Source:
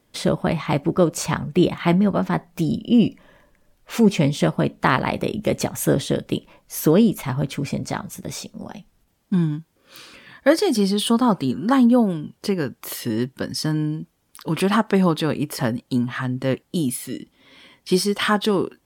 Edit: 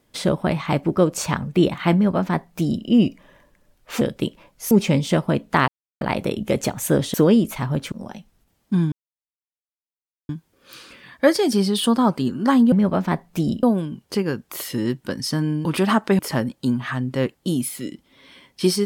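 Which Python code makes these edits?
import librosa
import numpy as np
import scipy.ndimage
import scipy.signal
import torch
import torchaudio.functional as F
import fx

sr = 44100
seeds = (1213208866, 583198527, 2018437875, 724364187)

y = fx.edit(x, sr, fx.duplicate(start_s=1.94, length_s=0.91, to_s=11.95),
    fx.insert_silence(at_s=4.98, length_s=0.33),
    fx.move(start_s=6.11, length_s=0.7, to_s=4.01),
    fx.cut(start_s=7.59, length_s=0.93),
    fx.insert_silence(at_s=9.52, length_s=1.37),
    fx.cut(start_s=13.97, length_s=0.51),
    fx.cut(start_s=15.02, length_s=0.45), tone=tone)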